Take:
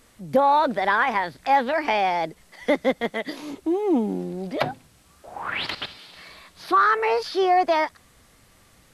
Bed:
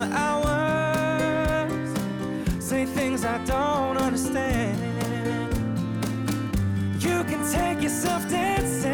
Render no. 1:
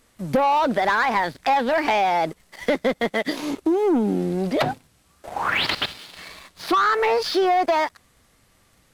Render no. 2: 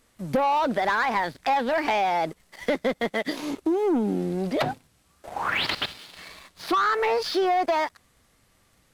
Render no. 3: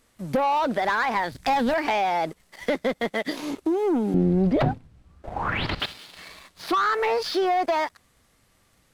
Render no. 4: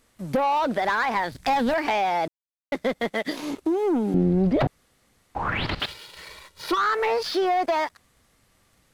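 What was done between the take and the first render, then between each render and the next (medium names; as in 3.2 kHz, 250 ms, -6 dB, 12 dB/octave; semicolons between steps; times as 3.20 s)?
waveshaping leveller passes 2; compression, threshold -17 dBFS, peak gain reduction 6 dB
trim -3.5 dB
1.32–1.74 s: tone controls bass +13 dB, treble +6 dB; 4.14–5.80 s: RIAA curve playback
2.28–2.72 s: mute; 4.67–5.35 s: room tone; 5.88–6.78 s: comb 2.1 ms, depth 72%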